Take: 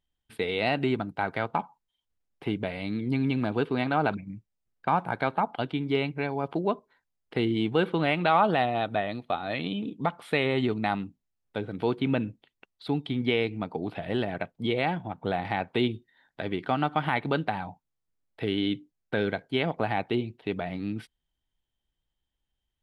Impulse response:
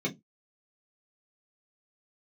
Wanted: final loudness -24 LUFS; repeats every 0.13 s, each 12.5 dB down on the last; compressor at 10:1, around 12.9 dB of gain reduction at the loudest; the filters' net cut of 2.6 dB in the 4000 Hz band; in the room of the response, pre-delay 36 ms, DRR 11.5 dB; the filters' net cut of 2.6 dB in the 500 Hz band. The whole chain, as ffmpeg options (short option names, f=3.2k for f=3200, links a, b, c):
-filter_complex "[0:a]equalizer=f=500:t=o:g=-3.5,equalizer=f=4k:t=o:g=-3.5,acompressor=threshold=-33dB:ratio=10,aecho=1:1:130|260|390:0.237|0.0569|0.0137,asplit=2[a][b];[1:a]atrim=start_sample=2205,adelay=36[c];[b][c]afir=irnorm=-1:irlink=0,volume=-18dB[d];[a][d]amix=inputs=2:normalize=0,volume=13.5dB"